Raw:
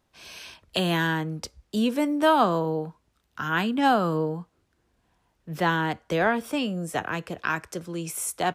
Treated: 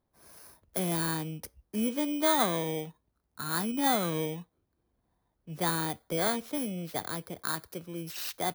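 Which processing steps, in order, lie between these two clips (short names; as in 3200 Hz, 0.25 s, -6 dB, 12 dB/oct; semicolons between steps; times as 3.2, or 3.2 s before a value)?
FFT order left unsorted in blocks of 16 samples; mismatched tape noise reduction decoder only; gain -6 dB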